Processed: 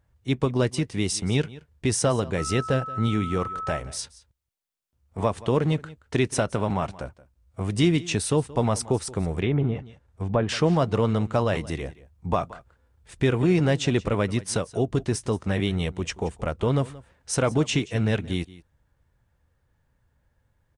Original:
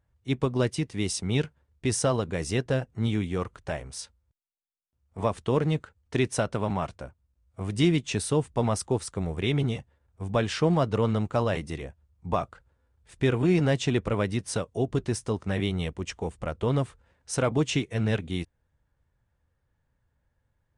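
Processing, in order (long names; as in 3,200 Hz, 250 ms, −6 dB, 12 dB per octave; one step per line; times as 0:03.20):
0:02.37–0:03.78: steady tone 1,300 Hz −35 dBFS
in parallel at −1 dB: downward compressor, threshold −31 dBFS, peak gain reduction 13 dB
on the sum: single-tap delay 176 ms −19.5 dB
0:09.38–0:10.49: treble cut that deepens with the level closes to 1,400 Hz, closed at −19.5 dBFS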